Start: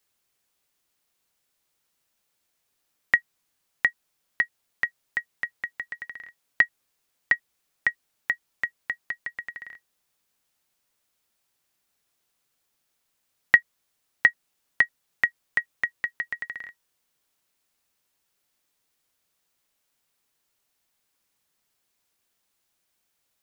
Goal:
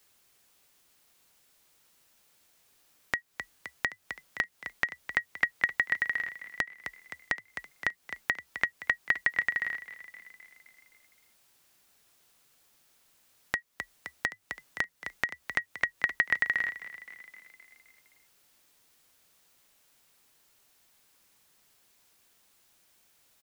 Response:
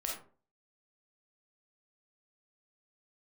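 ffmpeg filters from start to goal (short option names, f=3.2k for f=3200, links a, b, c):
-filter_complex "[0:a]acompressor=threshold=-30dB:ratio=8,asplit=7[a][b][c][d][e][f][g];[b]adelay=260,afreqshift=33,volume=-16dB[h];[c]adelay=520,afreqshift=66,volume=-20.6dB[i];[d]adelay=780,afreqshift=99,volume=-25.2dB[j];[e]adelay=1040,afreqshift=132,volume=-29.7dB[k];[f]adelay=1300,afreqshift=165,volume=-34.3dB[l];[g]adelay=1560,afreqshift=198,volume=-38.9dB[m];[a][h][i][j][k][l][m]amix=inputs=7:normalize=0,alimiter=level_in=17dB:limit=-1dB:release=50:level=0:latency=1,volume=-7.5dB"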